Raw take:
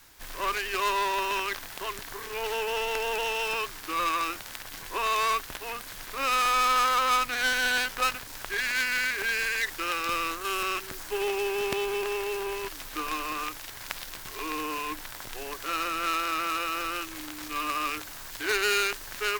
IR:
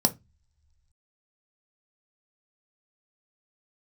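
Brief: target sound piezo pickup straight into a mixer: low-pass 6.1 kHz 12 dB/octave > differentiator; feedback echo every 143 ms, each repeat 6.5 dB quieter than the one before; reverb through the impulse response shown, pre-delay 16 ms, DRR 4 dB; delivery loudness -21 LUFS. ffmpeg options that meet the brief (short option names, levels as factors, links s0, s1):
-filter_complex "[0:a]aecho=1:1:143|286|429|572|715|858:0.473|0.222|0.105|0.0491|0.0231|0.0109,asplit=2[s0][s1];[1:a]atrim=start_sample=2205,adelay=16[s2];[s1][s2]afir=irnorm=-1:irlink=0,volume=0.2[s3];[s0][s3]amix=inputs=2:normalize=0,lowpass=6100,aderivative,volume=6.31"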